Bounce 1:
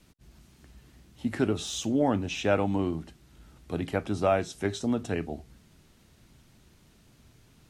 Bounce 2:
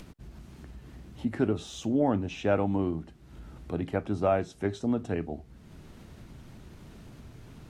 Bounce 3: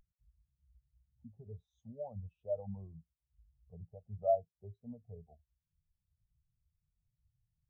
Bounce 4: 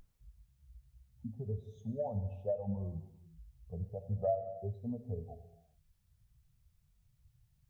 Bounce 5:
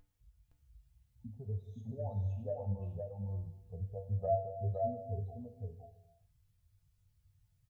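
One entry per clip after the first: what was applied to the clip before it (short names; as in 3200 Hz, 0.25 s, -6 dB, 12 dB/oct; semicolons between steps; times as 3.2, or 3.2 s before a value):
high shelf 2300 Hz -11 dB; upward compressor, threshold -36 dBFS
limiter -20.5 dBFS, peak gain reduction 7.5 dB; fixed phaser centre 730 Hz, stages 4; spectral expander 2.5:1; gain +1 dB
compressor 5:1, threshold -43 dBFS, peak gain reduction 16.5 dB; non-linear reverb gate 0.45 s falling, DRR 9 dB; gain +11 dB
resonator 97 Hz, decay 0.29 s, harmonics odd, mix 80%; on a send: echo 0.515 s -3 dB; on the sum: gain +5.5 dB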